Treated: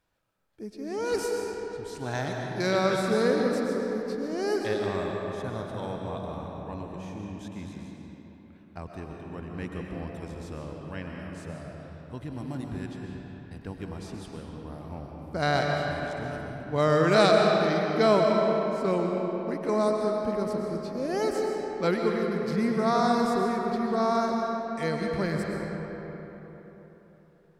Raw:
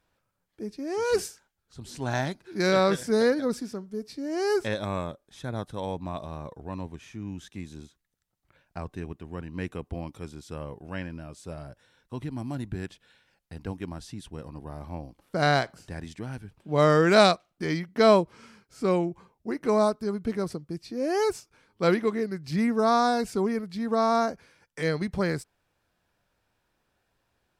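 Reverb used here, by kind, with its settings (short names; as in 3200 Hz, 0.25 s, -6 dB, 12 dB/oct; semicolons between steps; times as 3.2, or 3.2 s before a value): digital reverb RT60 4 s, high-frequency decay 0.55×, pre-delay 85 ms, DRR 0 dB; gain -3.5 dB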